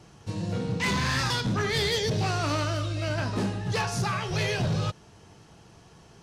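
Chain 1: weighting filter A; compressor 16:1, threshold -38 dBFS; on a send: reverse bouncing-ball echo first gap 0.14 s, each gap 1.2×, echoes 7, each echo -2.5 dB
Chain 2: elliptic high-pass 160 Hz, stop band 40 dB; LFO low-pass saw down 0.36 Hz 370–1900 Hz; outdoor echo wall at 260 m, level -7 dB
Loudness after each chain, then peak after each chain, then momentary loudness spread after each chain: -38.0, -29.5 LUFS; -25.0, -15.5 dBFS; 10, 11 LU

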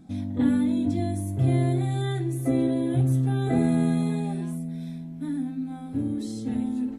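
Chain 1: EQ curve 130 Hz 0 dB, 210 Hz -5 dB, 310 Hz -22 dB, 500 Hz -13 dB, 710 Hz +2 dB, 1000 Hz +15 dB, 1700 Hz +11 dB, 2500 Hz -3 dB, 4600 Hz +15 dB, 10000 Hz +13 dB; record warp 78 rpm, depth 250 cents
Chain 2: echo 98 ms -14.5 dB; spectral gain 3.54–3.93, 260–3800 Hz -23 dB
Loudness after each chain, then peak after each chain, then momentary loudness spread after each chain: -28.0, -26.0 LUFS; -14.5, -11.0 dBFS; 15, 9 LU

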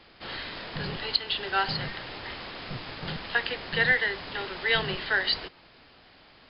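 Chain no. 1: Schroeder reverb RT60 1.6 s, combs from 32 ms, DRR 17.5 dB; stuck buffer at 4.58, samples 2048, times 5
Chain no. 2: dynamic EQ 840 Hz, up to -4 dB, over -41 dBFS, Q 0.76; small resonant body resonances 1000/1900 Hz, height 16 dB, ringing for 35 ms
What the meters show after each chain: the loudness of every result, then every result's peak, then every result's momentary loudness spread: -29.0, -24.5 LUFS; -9.0, -7.0 dBFS; 13, 16 LU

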